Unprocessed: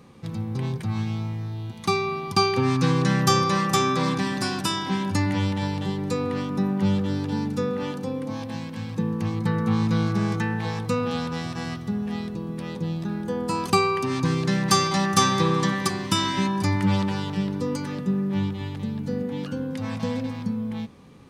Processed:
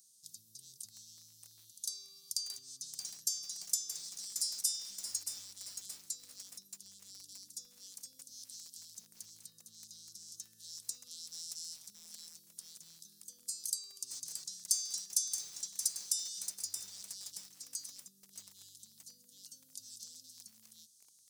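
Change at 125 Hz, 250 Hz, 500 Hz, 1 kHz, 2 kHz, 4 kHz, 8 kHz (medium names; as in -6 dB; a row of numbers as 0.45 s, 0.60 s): under -40 dB, under -40 dB, under -40 dB, under -40 dB, under -35 dB, -12.0 dB, -1.0 dB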